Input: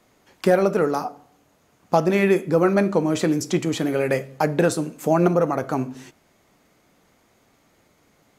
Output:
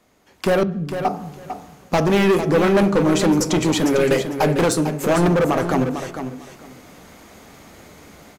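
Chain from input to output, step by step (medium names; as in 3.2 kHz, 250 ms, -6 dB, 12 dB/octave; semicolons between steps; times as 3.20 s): 0.63–1.05 s: inverse Chebyshev low-pass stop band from 1.1 kHz, stop band 80 dB; level rider gain up to 15.5 dB; hard clipper -13.5 dBFS, distortion -7 dB; feedback delay 450 ms, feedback 18%, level -9 dB; on a send at -16 dB: reverberation RT60 0.65 s, pre-delay 3 ms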